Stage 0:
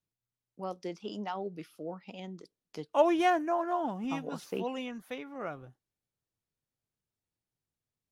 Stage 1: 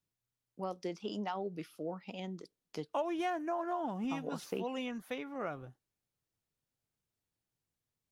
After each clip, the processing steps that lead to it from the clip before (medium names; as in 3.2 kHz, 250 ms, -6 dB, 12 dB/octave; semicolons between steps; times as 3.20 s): compression 5:1, threshold -34 dBFS, peak gain reduction 14 dB; trim +1 dB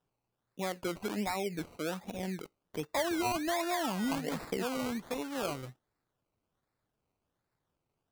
in parallel at -1.5 dB: peak limiter -34 dBFS, peak gain reduction 10 dB; on the sum: decimation with a swept rate 20×, swing 60% 1.3 Hz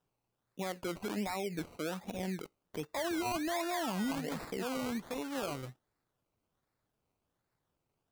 peak limiter -29 dBFS, peak gain reduction 7 dB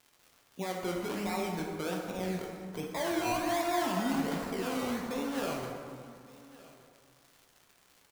crackle 210 per s -47 dBFS; delay 1167 ms -20.5 dB; plate-style reverb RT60 2 s, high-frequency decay 0.5×, DRR -1 dB